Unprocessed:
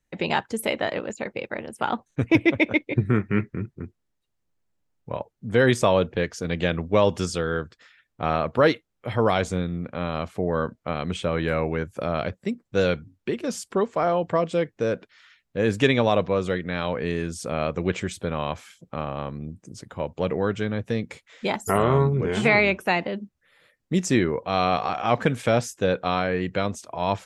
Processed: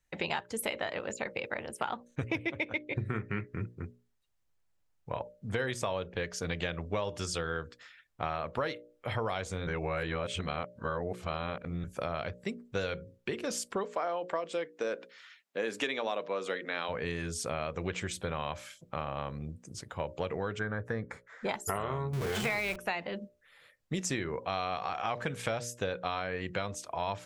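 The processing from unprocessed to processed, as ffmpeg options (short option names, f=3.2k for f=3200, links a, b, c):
-filter_complex "[0:a]asplit=3[a][b][c];[a]afade=t=out:st=13.83:d=0.02[d];[b]highpass=f=230:w=0.5412,highpass=f=230:w=1.3066,afade=t=in:st=13.83:d=0.02,afade=t=out:st=16.88:d=0.02[e];[c]afade=t=in:st=16.88:d=0.02[f];[d][e][f]amix=inputs=3:normalize=0,asettb=1/sr,asplit=3[g][h][i];[g]atrim=end=20.594[j];[h]atrim=start=20.59:end=21.49,asetpts=PTS-STARTPTS,afade=t=in:d=0.004:c=qsin,afade=t=out:st=0.896:d=0.004:c=qsin,highshelf=f=2.1k:t=q:w=3:g=-10[k];[i]atrim=start=21.486[l];[j][k]acrossfade=d=0.004:c1=hsin:c2=qsin[m];[m][l]acrossfade=d=0.004:c1=qsin:c2=hsin,asettb=1/sr,asplit=3[n][o][p];[n]atrim=end=22.134[q];[o]atrim=start=22.13:end=22.76,asetpts=PTS-STARTPTS,afade=t=in:d=0.004:c=qsin,afade=t=out:st=0.626:d=0.004:c=qsin,aeval=exprs='val(0)+0.5*0.0596*sgn(val(0))':c=same[r];[p]atrim=start=22.756[s];[q][r]acrossfade=d=0.004:c1=hsin:c2=qsin[t];[t][s]acrossfade=d=0.004:c1=qsin:c2=hsin,asplit=3[u][v][w];[u]atrim=end=9.672[x];[v]atrim=start=9.668:end=11.842,asetpts=PTS-STARTPTS,areverse[y];[w]atrim=start=11.838[z];[x][y]acrossfade=d=0.004:c1=hsin:c2=hsin[aa];[aa][z]acrossfade=d=0.004:c1=hsin:c2=hsin,equalizer=f=250:t=o:w=1.9:g=-7.5,bandreject=f=60:t=h:w=6,bandreject=f=120:t=h:w=6,bandreject=f=180:t=h:w=6,bandreject=f=240:t=h:w=6,bandreject=f=300:t=h:w=6,bandreject=f=360:t=h:w=6,bandreject=f=420:t=h:w=6,bandreject=f=480:t=h:w=6,bandreject=f=540:t=h:w=6,bandreject=f=600:t=h:w=6,acompressor=threshold=-30dB:ratio=6"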